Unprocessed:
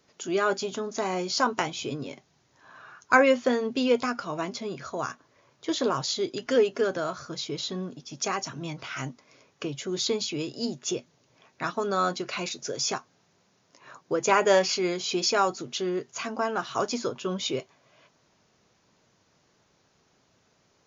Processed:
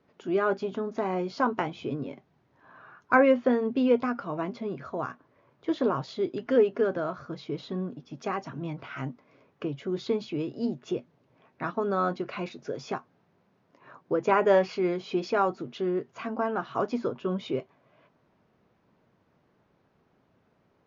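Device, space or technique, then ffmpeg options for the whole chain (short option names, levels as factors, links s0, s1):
phone in a pocket: -af "lowpass=3100,equalizer=f=230:t=o:w=1.1:g=2.5,highshelf=f=2300:g=-10.5"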